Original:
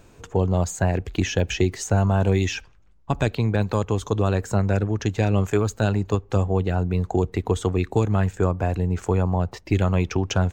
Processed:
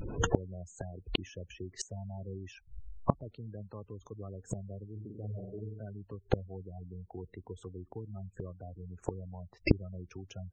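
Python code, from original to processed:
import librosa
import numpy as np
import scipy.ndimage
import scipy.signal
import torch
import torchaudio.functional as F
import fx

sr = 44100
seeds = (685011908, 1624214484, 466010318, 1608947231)

y = fx.room_flutter(x, sr, wall_m=8.1, rt60_s=1.0, at=(4.95, 5.79), fade=0.02)
y = fx.spec_gate(y, sr, threshold_db=-15, keep='strong')
y = fx.gate_flip(y, sr, shuts_db=-24.0, range_db=-35)
y = y * 10.0 ** (13.0 / 20.0)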